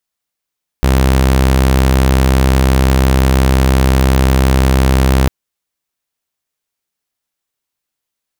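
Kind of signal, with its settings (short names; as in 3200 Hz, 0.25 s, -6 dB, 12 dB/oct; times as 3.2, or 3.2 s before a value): tone saw 65.7 Hz -5.5 dBFS 4.45 s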